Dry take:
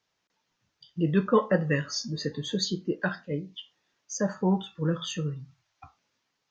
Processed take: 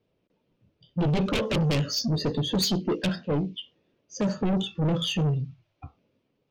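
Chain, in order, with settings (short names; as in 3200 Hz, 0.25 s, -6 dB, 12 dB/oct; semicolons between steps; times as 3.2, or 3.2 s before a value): low-pass opened by the level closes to 1200 Hz, open at -20.5 dBFS; dynamic EQ 3800 Hz, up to -6 dB, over -54 dBFS, Q 4.7; sine folder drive 15 dB, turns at -8 dBFS; band shelf 1200 Hz -14.5 dB; soft clip -15.5 dBFS, distortion -11 dB; gain -5.5 dB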